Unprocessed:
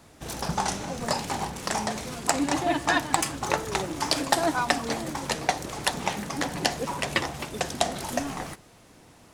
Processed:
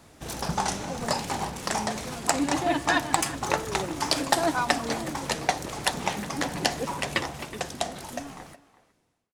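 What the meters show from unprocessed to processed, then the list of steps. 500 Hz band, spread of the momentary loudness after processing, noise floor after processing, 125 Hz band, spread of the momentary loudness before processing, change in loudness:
−0.5 dB, 10 LU, −65 dBFS, −0.5 dB, 8 LU, 0.0 dB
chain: fade-out on the ending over 2.54 s
far-end echo of a speakerphone 370 ms, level −17 dB

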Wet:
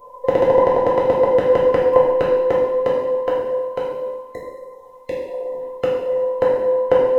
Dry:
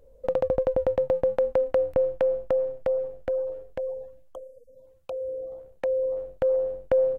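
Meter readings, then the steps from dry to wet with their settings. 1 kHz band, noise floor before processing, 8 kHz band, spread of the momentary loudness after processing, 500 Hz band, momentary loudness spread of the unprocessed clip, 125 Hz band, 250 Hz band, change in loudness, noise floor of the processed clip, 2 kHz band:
+18.0 dB, −54 dBFS, can't be measured, 14 LU, +8.5 dB, 14 LU, +9.0 dB, +14.0 dB, +8.5 dB, −42 dBFS, +14.5 dB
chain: frequency inversion band by band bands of 1,000 Hz
coupled-rooms reverb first 0.95 s, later 2.8 s, from −21 dB, DRR −5.5 dB
level +6.5 dB

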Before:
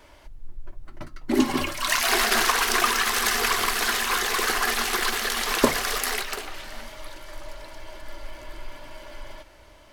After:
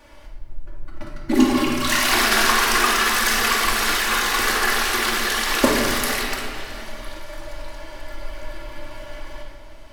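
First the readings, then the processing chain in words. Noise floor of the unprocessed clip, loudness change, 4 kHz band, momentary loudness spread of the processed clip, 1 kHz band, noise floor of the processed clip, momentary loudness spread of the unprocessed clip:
−51 dBFS, +4.0 dB, +4.0 dB, 21 LU, +4.0 dB, −39 dBFS, 22 LU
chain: rectangular room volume 1,500 cubic metres, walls mixed, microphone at 2.4 metres

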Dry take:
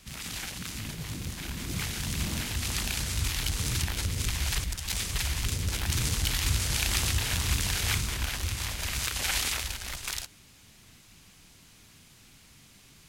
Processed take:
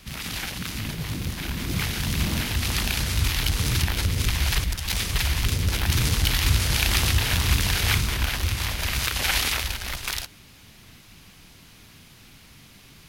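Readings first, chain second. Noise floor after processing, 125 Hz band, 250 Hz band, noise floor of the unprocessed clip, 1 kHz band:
−50 dBFS, +7.0 dB, +7.0 dB, −56 dBFS, +7.0 dB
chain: parametric band 7,700 Hz −7.5 dB 0.79 octaves
level +7 dB

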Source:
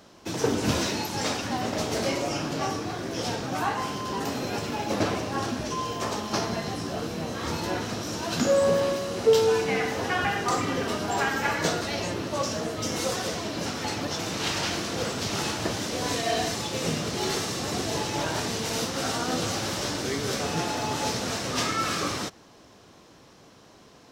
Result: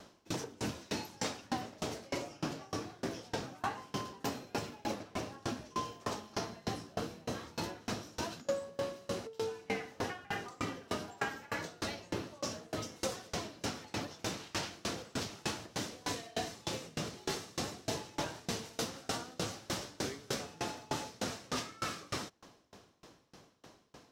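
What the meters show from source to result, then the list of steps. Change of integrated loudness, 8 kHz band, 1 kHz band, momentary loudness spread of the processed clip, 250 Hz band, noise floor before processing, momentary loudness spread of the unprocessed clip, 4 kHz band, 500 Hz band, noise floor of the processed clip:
−12.0 dB, −11.5 dB, −11.5 dB, 4 LU, −11.5 dB, −53 dBFS, 5 LU, −11.5 dB, −13.5 dB, −63 dBFS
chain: downward compressor 6 to 1, threshold −29 dBFS, peak gain reduction 13.5 dB
tremolo with a ramp in dB decaying 3.3 Hz, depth 29 dB
level +1 dB

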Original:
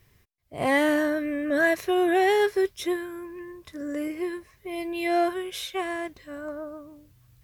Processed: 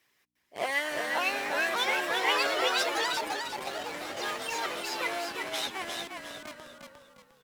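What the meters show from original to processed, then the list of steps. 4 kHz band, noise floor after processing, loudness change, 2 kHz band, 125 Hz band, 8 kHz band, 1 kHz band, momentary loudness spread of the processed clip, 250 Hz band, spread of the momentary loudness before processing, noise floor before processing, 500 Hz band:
+6.0 dB, −72 dBFS, −4.0 dB, −0.5 dB, can't be measured, +4.5 dB, −2.0 dB, 15 LU, −16.0 dB, 17 LU, −62 dBFS, −9.0 dB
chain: mains hum 60 Hz, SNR 33 dB
delay with pitch and tempo change per echo 697 ms, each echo +5 semitones, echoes 3
low-shelf EQ 260 Hz −11.5 dB
in parallel at −6 dB: comparator with hysteresis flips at −31.5 dBFS
on the sum: meter weighting curve A
harmonic and percussive parts rebalanced harmonic −12 dB
on a send: echo with shifted repeats 354 ms, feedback 37%, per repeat −49 Hz, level −4.5 dB

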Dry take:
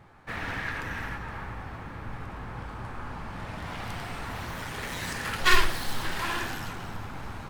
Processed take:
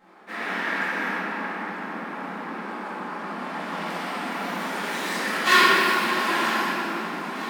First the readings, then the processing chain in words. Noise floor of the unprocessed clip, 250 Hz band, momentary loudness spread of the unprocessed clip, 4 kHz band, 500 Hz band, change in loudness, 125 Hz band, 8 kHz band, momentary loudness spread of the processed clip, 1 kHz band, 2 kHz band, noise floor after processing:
−41 dBFS, +9.0 dB, 14 LU, +6.0 dB, +9.0 dB, +7.5 dB, −6.0 dB, +3.5 dB, 15 LU, +9.0 dB, +7.5 dB, −34 dBFS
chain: linear-phase brick-wall high-pass 180 Hz
feedback echo with a high-pass in the loop 947 ms, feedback 61%, level −16 dB
rectangular room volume 210 cubic metres, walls hard, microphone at 2.1 metres
level −5 dB

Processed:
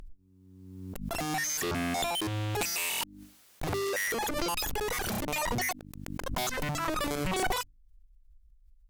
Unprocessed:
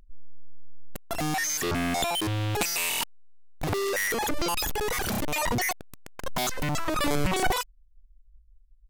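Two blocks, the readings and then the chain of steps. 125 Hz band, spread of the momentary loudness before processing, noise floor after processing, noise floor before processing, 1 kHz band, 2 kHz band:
−4.0 dB, 10 LU, −60 dBFS, −57 dBFS, −3.5 dB, −3.5 dB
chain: harmonic generator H 4 −23 dB, 5 −28 dB, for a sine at −14 dBFS
mains-hum notches 50/100/150/200/250/300 Hz
background raised ahead of every attack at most 37 dB per second
level −5 dB

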